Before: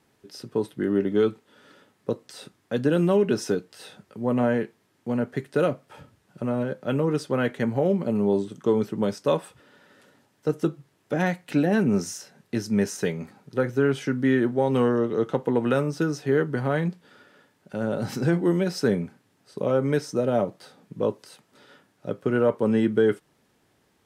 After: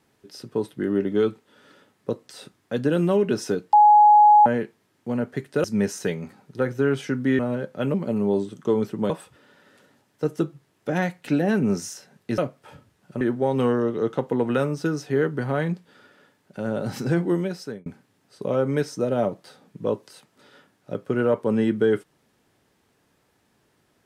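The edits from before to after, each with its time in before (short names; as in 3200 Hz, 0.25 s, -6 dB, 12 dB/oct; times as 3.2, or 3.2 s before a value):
3.73–4.46 bleep 838 Hz -9.5 dBFS
5.64–6.47 swap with 12.62–14.37
7.02–7.93 cut
9.09–9.34 cut
18.44–19.02 fade out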